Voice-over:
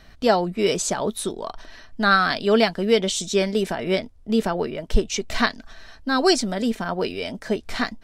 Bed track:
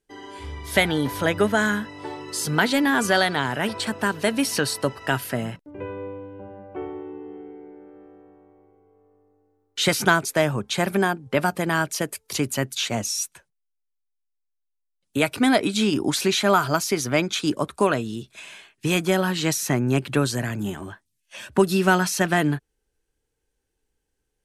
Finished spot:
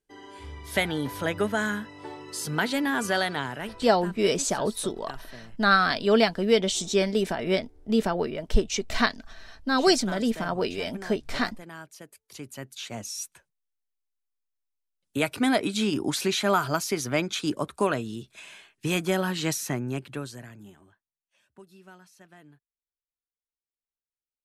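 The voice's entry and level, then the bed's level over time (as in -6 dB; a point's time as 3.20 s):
3.60 s, -2.5 dB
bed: 3.38 s -6 dB
4.21 s -20 dB
12.07 s -20 dB
13.54 s -4.5 dB
19.53 s -4.5 dB
21.56 s -32 dB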